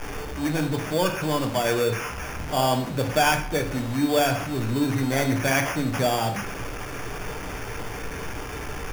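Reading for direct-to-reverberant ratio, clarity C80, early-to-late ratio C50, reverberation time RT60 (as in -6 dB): 3.5 dB, 14.5 dB, 10.0 dB, 0.50 s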